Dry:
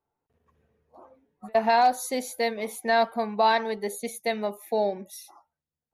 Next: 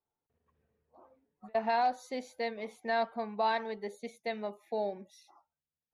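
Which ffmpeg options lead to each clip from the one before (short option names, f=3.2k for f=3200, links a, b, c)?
-af "lowpass=4.6k,volume=-8.5dB"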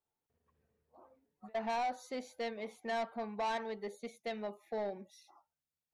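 -af "asoftclip=type=tanh:threshold=-29.5dB,volume=-1.5dB"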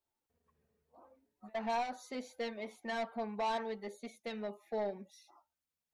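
-af "flanger=delay=3.1:depth=1.8:regen=-39:speed=0.74:shape=sinusoidal,volume=4dB"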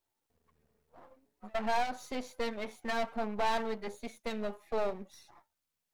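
-af "aeval=exprs='if(lt(val(0),0),0.251*val(0),val(0))':c=same,volume=7.5dB"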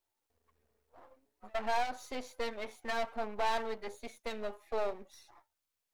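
-af "equalizer=f=170:t=o:w=0.81:g=-12.5,volume=-1dB"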